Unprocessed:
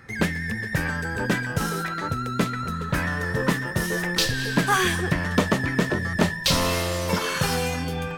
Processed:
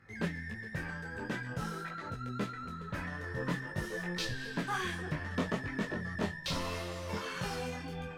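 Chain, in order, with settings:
high-shelf EQ 7,800 Hz −11.5 dB
micro pitch shift up and down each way 18 cents
level −9 dB

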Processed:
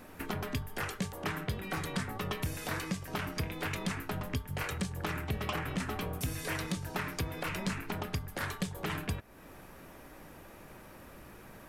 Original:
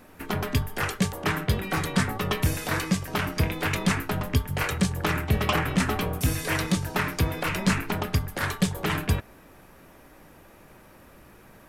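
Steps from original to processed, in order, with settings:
downward compressor 2.5 to 1, threshold −37 dBFS, peak gain reduction 13.5 dB

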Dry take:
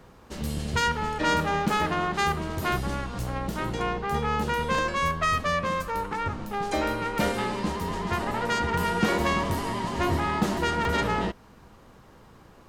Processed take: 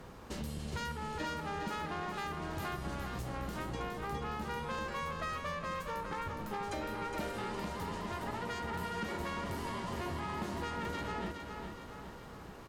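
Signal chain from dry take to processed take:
downward compressor 5 to 1, threshold −39 dBFS, peak gain reduction 18.5 dB
asymmetric clip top −34 dBFS, bottom −31 dBFS
on a send: repeating echo 414 ms, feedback 51%, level −6 dB
on the sum: level +1 dB

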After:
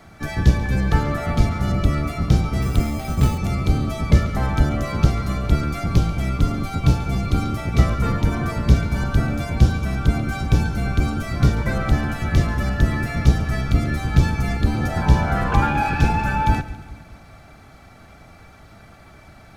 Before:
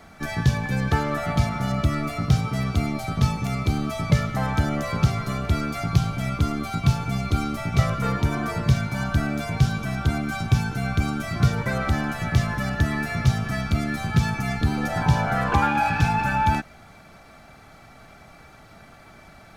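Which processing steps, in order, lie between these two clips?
sub-octave generator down 1 octave, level +3 dB
echo with a time of its own for lows and highs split 330 Hz, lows 210 ms, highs 139 ms, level −15.5 dB
0:02.62–0:03.38: bad sample-rate conversion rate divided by 6×, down none, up hold

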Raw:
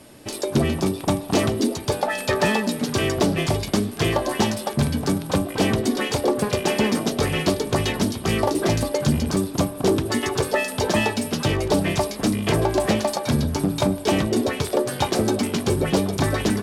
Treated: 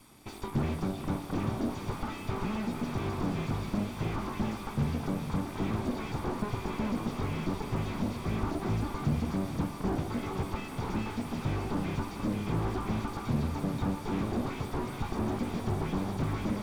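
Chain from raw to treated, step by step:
lower of the sound and its delayed copy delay 0.87 ms
feedback delay with all-pass diffusion 462 ms, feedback 62%, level −11.5 dB
slew-rate limiting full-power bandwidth 43 Hz
level −8 dB

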